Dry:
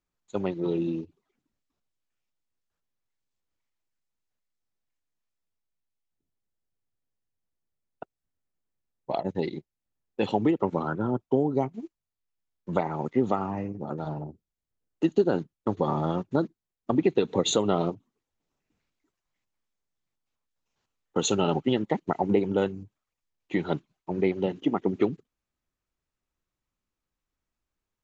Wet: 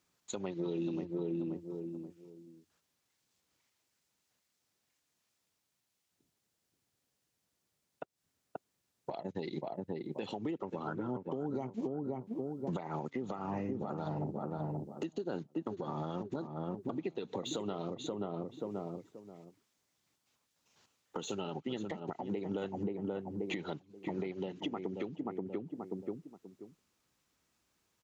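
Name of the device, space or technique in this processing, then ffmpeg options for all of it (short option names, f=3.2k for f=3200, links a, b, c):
broadcast voice chain: -filter_complex "[0:a]highpass=100,asplit=2[a][b];[b]adelay=531,lowpass=f=1.1k:p=1,volume=-10dB,asplit=2[c][d];[d]adelay=531,lowpass=f=1.1k:p=1,volume=0.24,asplit=2[e][f];[f]adelay=531,lowpass=f=1.1k:p=1,volume=0.24[g];[a][c][e][g]amix=inputs=4:normalize=0,deesser=0.8,acompressor=threshold=-40dB:ratio=5,equalizer=f=5.9k:t=o:w=2.1:g=5,alimiter=level_in=12dB:limit=-24dB:level=0:latency=1:release=268,volume=-12dB,volume=9dB"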